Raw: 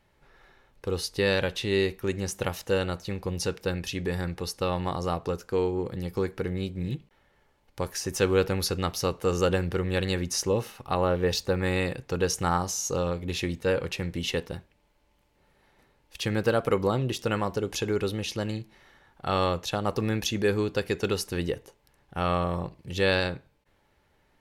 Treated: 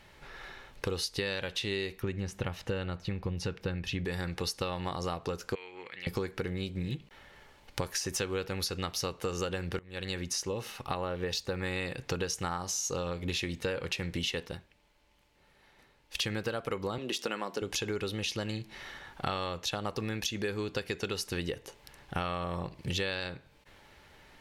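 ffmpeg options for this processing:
-filter_complex "[0:a]asettb=1/sr,asplit=3[s0][s1][s2];[s0]atrim=end=2.024[s3];[s1]atrim=start=2.02:end=4.05,asetpts=PTS-STARTPTS,afade=t=in:d=0.004:c=qsin,afade=t=out:st=2.026:d=0.004:c=qsin,bass=f=250:g=7,treble=f=4000:g=-11[s4];[s2]atrim=start=4.046[s5];[s3][s4]acrossfade=d=0.004:c1=hsin:c2=qsin[s6];[s6][s5]acrossfade=d=0.004:c1=qsin:c2=hsin,asettb=1/sr,asplit=3[s7][s8][s9];[s7]atrim=end=5.554[s10];[s8]atrim=start=5.55:end=6.07,asetpts=PTS-STARTPTS,afade=t=in:d=0.004:c=qsin,afade=t=out:st=0.516:d=0.004:c=qsin,bandpass=f=2200:t=q:w=3.2[s11];[s9]atrim=start=6.066[s12];[s10][s11]acrossfade=d=0.004:c1=hsin:c2=qsin[s13];[s13][s12]acrossfade=d=0.004:c1=qsin:c2=hsin,asettb=1/sr,asplit=3[s14][s15][s16];[s14]atrim=end=16.984[s17];[s15]atrim=start=16.98:end=17.62,asetpts=PTS-STARTPTS,afade=t=in:d=0.004:c=qsin,afade=t=out:st=0.636:d=0.004:c=qsin,highpass=f=200:w=0.5412,highpass=f=200:w=1.3066[s18];[s16]atrim=start=17.616[s19];[s17][s18]acrossfade=d=0.004:c1=hsin:c2=qsin[s20];[s20][s19]acrossfade=d=0.004:c1=qsin:c2=hsin,asplit=4[s21][s22][s23][s24];[s21]atrim=end=9.79,asetpts=PTS-STARTPTS,afade=t=out:st=9.786:d=0.004:c=hsin:silence=0.0668344[s25];[s22]atrim=start=9.79:end=14.58,asetpts=PTS-STARTPTS,afade=t=in:d=2.76:silence=0.0668344,afade=t=out:st=4.65:d=0.14:silence=0.334965[s26];[s23]atrim=start=14.58:end=16.1,asetpts=PTS-STARTPTS,volume=0.335[s27];[s24]atrim=start=16.1,asetpts=PTS-STARTPTS,afade=t=in:d=0.14:silence=0.334965[s28];[s25][s26][s27][s28]concat=n=4:v=0:a=1,equalizer=f=3500:t=o:w=2.9:g=6.5,acompressor=threshold=0.0126:ratio=12,volume=2.37"

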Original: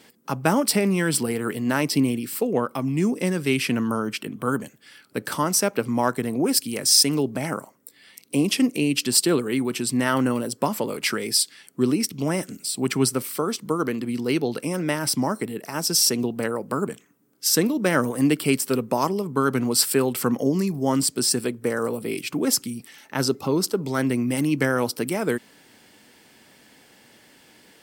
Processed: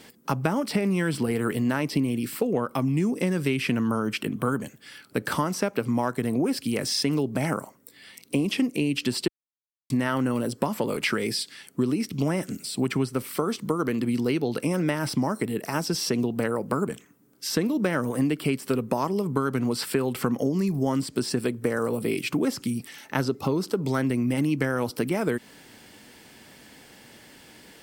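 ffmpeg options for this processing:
-filter_complex "[0:a]asplit=3[s0][s1][s2];[s0]atrim=end=9.28,asetpts=PTS-STARTPTS,afade=t=out:st=9.276:d=0.004:c=hsin[s3];[s1]atrim=start=9.28:end=9.9,asetpts=PTS-STARTPTS,volume=0[s4];[s2]atrim=start=9.9,asetpts=PTS-STARTPTS,afade=t=in:d=0.004:c=hsin[s5];[s3][s4][s5]concat=n=3:v=0:a=1,acrossover=split=3600[s6][s7];[s7]acompressor=threshold=0.0141:ratio=4:attack=1:release=60[s8];[s6][s8]amix=inputs=2:normalize=0,lowshelf=f=98:g=8.5,acompressor=threshold=0.0631:ratio=6,volume=1.41"

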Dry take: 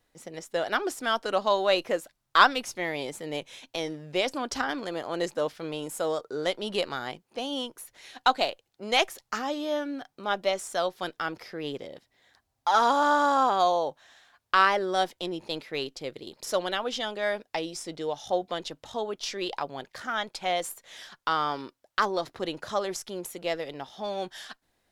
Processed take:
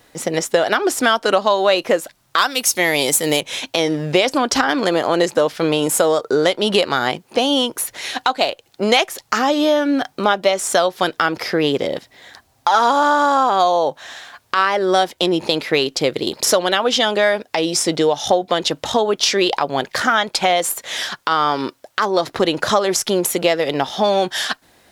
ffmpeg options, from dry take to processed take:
-filter_complex "[0:a]asettb=1/sr,asplit=3[s0][s1][s2];[s0]atrim=end=2.384[s3];[s1]atrim=start=2.38:end=3.41,asetpts=PTS-STARTPTS,afade=t=in:d=0.004:c=qsin,afade=t=out:st=1.026:d=0.004:c=qsin,aemphasis=mode=production:type=75fm[s4];[s2]atrim=start=3.406[s5];[s3][s4]acrossfade=d=0.004:c1=hsin:c2=qsin[s6];[s6][s5]acrossfade=d=0.004:c1=qsin:c2=hsin,highpass=f=94:p=1,acompressor=threshold=0.02:ratio=5,alimiter=level_in=12.6:limit=0.891:release=50:level=0:latency=1,volume=0.891"

